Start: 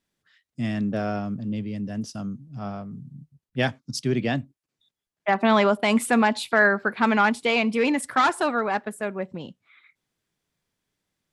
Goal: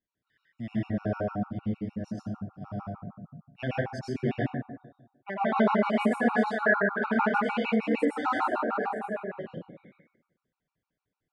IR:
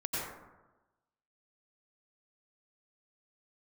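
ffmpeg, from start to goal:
-filter_complex "[0:a]aemphasis=mode=reproduction:type=75fm[a];[1:a]atrim=start_sample=2205[b];[a][b]afir=irnorm=-1:irlink=0,afftfilt=real='re*gt(sin(2*PI*6.6*pts/sr)*(1-2*mod(floor(b*sr/1024/740),2)),0)':imag='im*gt(sin(2*PI*6.6*pts/sr)*(1-2*mod(floor(b*sr/1024/740),2)),0)':win_size=1024:overlap=0.75,volume=-7.5dB"

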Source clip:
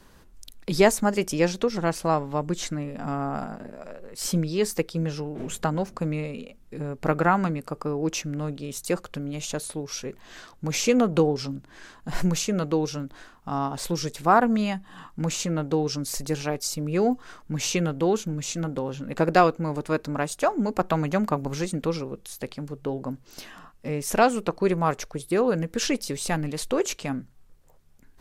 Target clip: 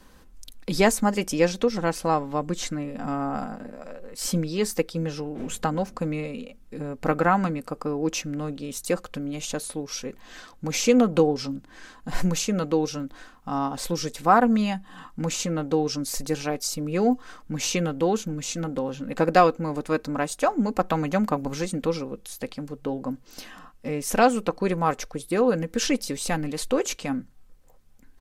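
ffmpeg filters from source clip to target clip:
-af "aecho=1:1:3.9:0.38"

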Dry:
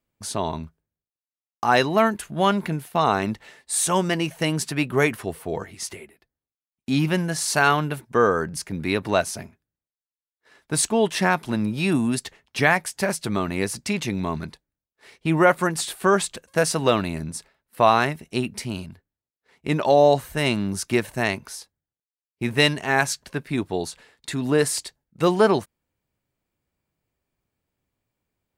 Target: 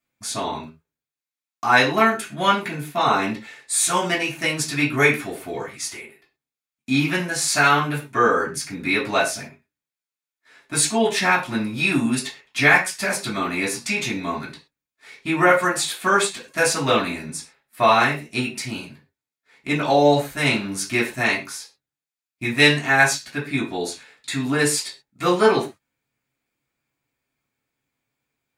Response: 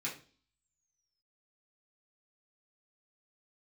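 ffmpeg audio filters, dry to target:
-filter_complex "[0:a]lowshelf=f=460:g=-10.5[a];[1:a]atrim=start_sample=2205,atrim=end_sample=6174[b];[a][b]afir=irnorm=-1:irlink=0,volume=4dB"

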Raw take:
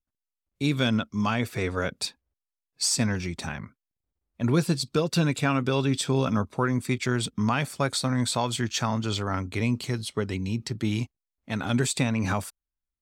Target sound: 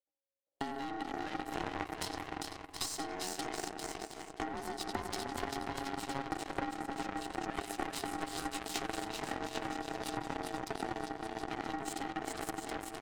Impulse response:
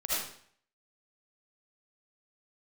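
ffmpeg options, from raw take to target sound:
-filter_complex "[0:a]equalizer=f=250:t=o:w=0.22:g=13.5,asplit=2[a][b];[b]adelay=93,lowpass=f=2.9k:p=1,volume=-12dB,asplit=2[c][d];[d]adelay=93,lowpass=f=2.9k:p=1,volume=0.3,asplit=2[e][f];[f]adelay=93,lowpass=f=2.9k:p=1,volume=0.3[g];[c][e][g]amix=inputs=3:normalize=0[h];[a][h]amix=inputs=2:normalize=0,asoftclip=type=tanh:threshold=-24dB,alimiter=level_in=7dB:limit=-24dB:level=0:latency=1:release=85,volume=-7dB,asplit=2[i][j];[j]aecho=0:1:400|720|976|1181|1345:0.631|0.398|0.251|0.158|0.1[k];[i][k]amix=inputs=2:normalize=0,aeval=exprs='val(0)*sin(2*PI*550*n/s)':c=same,acompressor=threshold=-38dB:ratio=12,aeval=exprs='0.0398*(cos(1*acos(clip(val(0)/0.0398,-1,1)))-cos(1*PI/2))+0.0126*(cos(3*acos(clip(val(0)/0.0398,-1,1)))-cos(3*PI/2))+0.000891*(cos(4*acos(clip(val(0)/0.0398,-1,1)))-cos(4*PI/2))':c=same,volume=15dB"

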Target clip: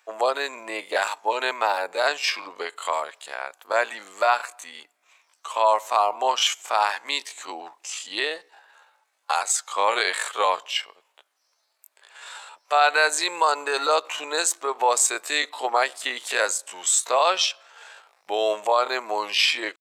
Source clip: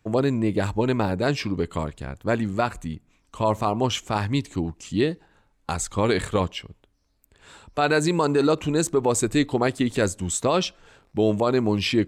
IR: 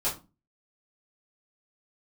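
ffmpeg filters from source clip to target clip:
-filter_complex "[0:a]highpass=f=660:w=0.5412,highpass=f=660:w=1.3066,asplit=2[a][b];[b]alimiter=limit=-20dB:level=0:latency=1:release=244,volume=1.5dB[c];[a][c]amix=inputs=2:normalize=0,atempo=0.61,volume=1.5dB"

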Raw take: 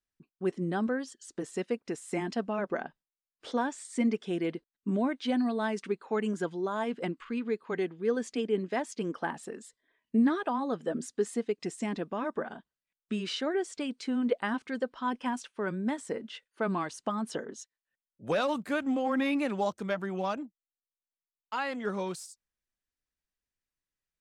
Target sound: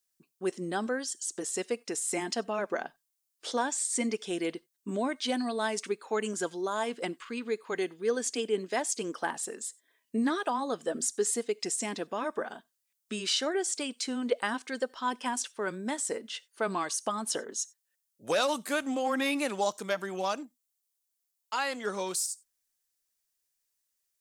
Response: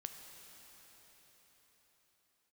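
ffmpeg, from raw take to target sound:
-filter_complex "[0:a]bass=f=250:g=-11,treble=f=4k:g=12,asplit=2[a][b];[1:a]atrim=start_sample=2205,atrim=end_sample=4410,highshelf=f=4.1k:g=11.5[c];[b][c]afir=irnorm=-1:irlink=0,volume=-10.5dB[d];[a][d]amix=inputs=2:normalize=0"

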